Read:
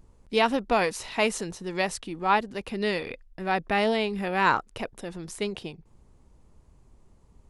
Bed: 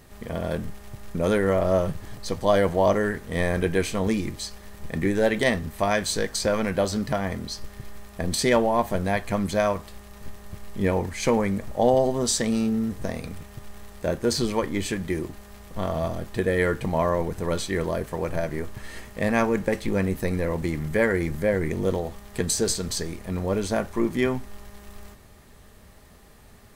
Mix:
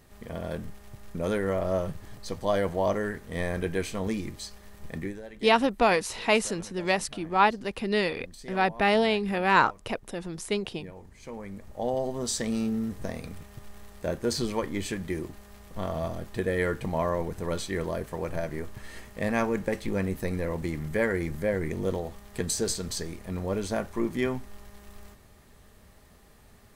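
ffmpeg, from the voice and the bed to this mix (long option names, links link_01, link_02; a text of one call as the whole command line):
ffmpeg -i stem1.wav -i stem2.wav -filter_complex "[0:a]adelay=5100,volume=1.5dB[link_01];[1:a]volume=12dB,afade=type=out:start_time=4.92:duration=0.3:silence=0.149624,afade=type=in:start_time=11.22:duration=1.4:silence=0.125893[link_02];[link_01][link_02]amix=inputs=2:normalize=0" out.wav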